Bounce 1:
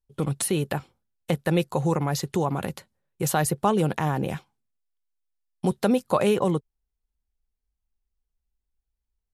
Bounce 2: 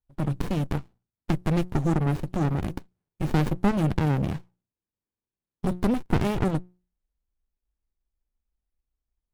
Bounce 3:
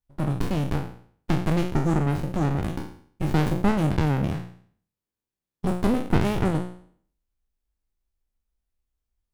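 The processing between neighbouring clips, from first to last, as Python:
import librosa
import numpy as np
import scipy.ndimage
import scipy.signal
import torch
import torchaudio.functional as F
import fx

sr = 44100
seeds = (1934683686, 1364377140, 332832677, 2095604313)

y1 = fx.hum_notches(x, sr, base_hz=60, count=3)
y1 = fx.running_max(y1, sr, window=65)
y2 = fx.spec_trails(y1, sr, decay_s=0.54)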